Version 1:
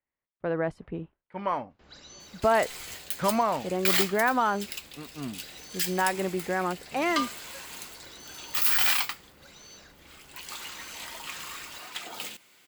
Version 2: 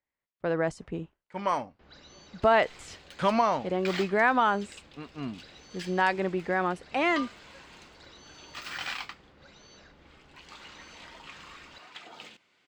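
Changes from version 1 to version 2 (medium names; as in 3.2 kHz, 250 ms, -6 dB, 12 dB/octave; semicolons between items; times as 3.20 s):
speech: remove distance through air 390 m; second sound -5.5 dB; master: add distance through air 140 m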